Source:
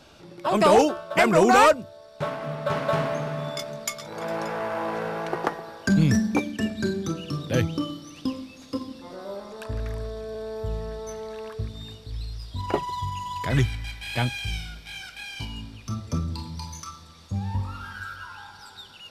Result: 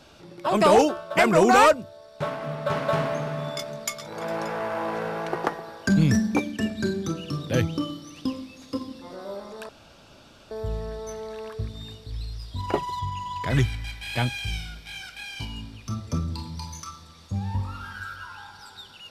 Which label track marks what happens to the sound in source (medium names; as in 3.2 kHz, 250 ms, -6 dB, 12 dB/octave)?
9.690000	10.510000	room tone
12.990000	13.470000	treble shelf 8.4 kHz -12 dB